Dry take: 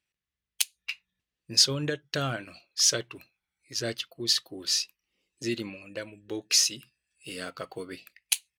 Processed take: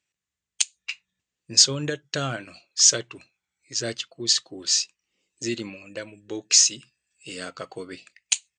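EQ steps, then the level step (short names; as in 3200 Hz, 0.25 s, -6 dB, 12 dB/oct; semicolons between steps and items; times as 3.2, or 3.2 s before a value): HPF 75 Hz; brick-wall FIR low-pass 9100 Hz; bell 7000 Hz +9.5 dB 0.38 oct; +2.0 dB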